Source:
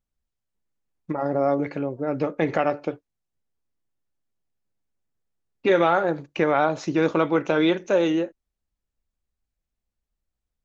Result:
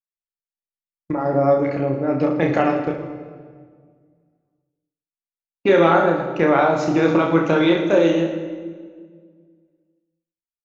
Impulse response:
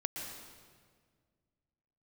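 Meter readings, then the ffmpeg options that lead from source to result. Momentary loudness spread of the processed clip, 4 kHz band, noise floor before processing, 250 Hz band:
13 LU, +3.5 dB, -85 dBFS, +6.0 dB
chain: -filter_complex "[0:a]agate=range=-37dB:threshold=-34dB:ratio=16:detection=peak,aecho=1:1:30|66|109.2|161|223.2:0.631|0.398|0.251|0.158|0.1,asplit=2[a][b];[1:a]atrim=start_sample=2205,lowshelf=f=310:g=7.5[c];[b][c]afir=irnorm=-1:irlink=0,volume=-6dB[d];[a][d]amix=inputs=2:normalize=0,volume=-1.5dB"

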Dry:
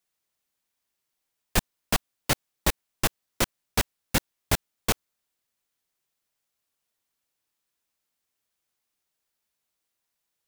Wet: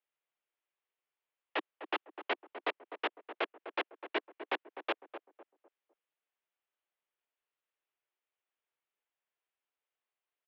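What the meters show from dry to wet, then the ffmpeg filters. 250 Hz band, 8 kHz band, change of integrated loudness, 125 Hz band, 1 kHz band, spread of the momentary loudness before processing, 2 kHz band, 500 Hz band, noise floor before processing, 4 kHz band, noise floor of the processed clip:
-12.5 dB, under -40 dB, -10.0 dB, under -40 dB, -5.0 dB, 2 LU, -6.0 dB, -5.0 dB, -82 dBFS, -11.5 dB, under -85 dBFS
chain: -filter_complex "[0:a]asplit=2[a][b];[b]adelay=252,lowpass=f=980:p=1,volume=-9.5dB,asplit=2[c][d];[d]adelay=252,lowpass=f=980:p=1,volume=0.36,asplit=2[e][f];[f]adelay=252,lowpass=f=980:p=1,volume=0.36,asplit=2[g][h];[h]adelay=252,lowpass=f=980:p=1,volume=0.36[i];[a][c][e][g][i]amix=inputs=5:normalize=0,highpass=f=220:t=q:w=0.5412,highpass=f=220:t=q:w=1.307,lowpass=f=3.1k:t=q:w=0.5176,lowpass=f=3.1k:t=q:w=0.7071,lowpass=f=3.1k:t=q:w=1.932,afreqshift=120,volume=-6dB"

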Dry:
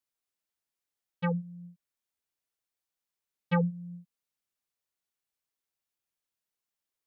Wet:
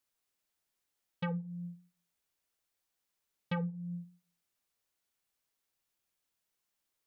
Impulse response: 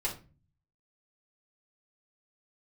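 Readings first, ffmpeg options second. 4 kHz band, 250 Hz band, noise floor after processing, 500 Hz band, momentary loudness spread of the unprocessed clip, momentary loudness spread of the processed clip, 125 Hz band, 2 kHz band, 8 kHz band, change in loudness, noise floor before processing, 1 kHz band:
-1.5 dB, -5.5 dB, -85 dBFS, -8.5 dB, 19 LU, 13 LU, -5.5 dB, -6.5 dB, n/a, -7.5 dB, under -85 dBFS, -7.5 dB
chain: -filter_complex "[0:a]acompressor=threshold=-40dB:ratio=4,asplit=2[a][b];[1:a]atrim=start_sample=2205,asetrate=70560,aresample=44100,adelay=13[c];[b][c]afir=irnorm=-1:irlink=0,volume=-15dB[d];[a][d]amix=inputs=2:normalize=0,volume=4.5dB"

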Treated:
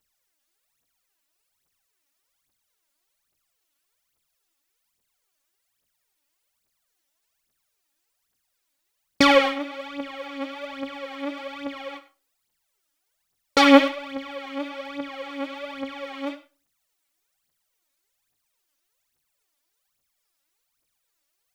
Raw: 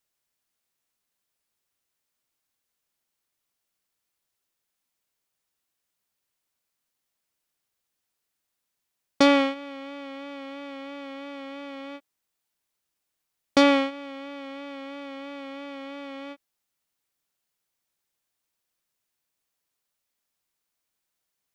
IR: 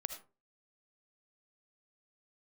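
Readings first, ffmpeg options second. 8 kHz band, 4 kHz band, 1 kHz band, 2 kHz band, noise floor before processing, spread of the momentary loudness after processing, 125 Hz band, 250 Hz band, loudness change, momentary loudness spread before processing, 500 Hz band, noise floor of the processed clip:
+4.5 dB, +5.5 dB, +5.5 dB, +6.0 dB, -82 dBFS, 18 LU, n/a, +2.5 dB, -1.5 dB, 19 LU, +3.5 dB, -77 dBFS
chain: -filter_complex "[0:a]aphaser=in_gain=1:out_gain=1:delay=3.7:decay=0.78:speed=1.2:type=triangular,asplit=2[a][b];[1:a]atrim=start_sample=2205,lowshelf=f=390:g=-5[c];[b][c]afir=irnorm=-1:irlink=0,volume=2dB[d];[a][d]amix=inputs=2:normalize=0,volume=-5dB"

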